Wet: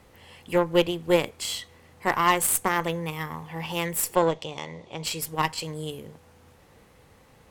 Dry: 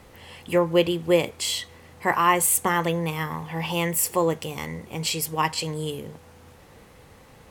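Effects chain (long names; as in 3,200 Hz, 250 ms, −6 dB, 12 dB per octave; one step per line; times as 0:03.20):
0:04.15–0:05.04: loudspeaker in its box 110–6,700 Hz, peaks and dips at 220 Hz −8 dB, 600 Hz +7 dB, 900 Hz +4 dB, 1,500 Hz −10 dB, 3,500 Hz +8 dB
harmonic generator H 2 −18 dB, 4 −17 dB, 7 −26 dB, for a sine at −5.5 dBFS
level −1.5 dB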